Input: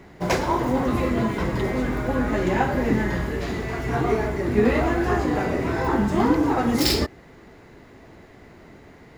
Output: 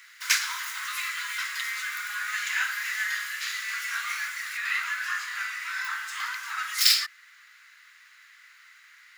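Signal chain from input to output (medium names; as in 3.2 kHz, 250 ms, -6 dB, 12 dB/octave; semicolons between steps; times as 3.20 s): steep high-pass 1.3 kHz 48 dB/octave; treble shelf 3.5 kHz +9.5 dB, from 4.57 s +3 dB; trim +2 dB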